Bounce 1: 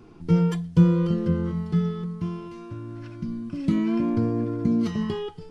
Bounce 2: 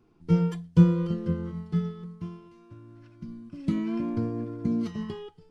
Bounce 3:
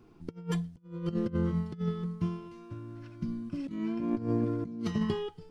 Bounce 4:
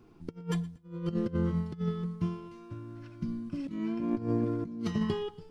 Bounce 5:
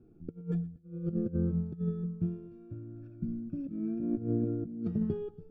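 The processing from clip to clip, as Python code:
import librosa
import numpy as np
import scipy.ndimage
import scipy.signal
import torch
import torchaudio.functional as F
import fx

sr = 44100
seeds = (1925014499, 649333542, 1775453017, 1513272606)

y1 = fx.upward_expand(x, sr, threshold_db=-40.0, expansion=1.5)
y2 = fx.over_compress(y1, sr, threshold_db=-32.0, ratio=-0.5)
y3 = fx.echo_feedback(y2, sr, ms=118, feedback_pct=25, wet_db=-21.5)
y4 = np.convolve(y3, np.full(44, 1.0 / 44))[:len(y3)]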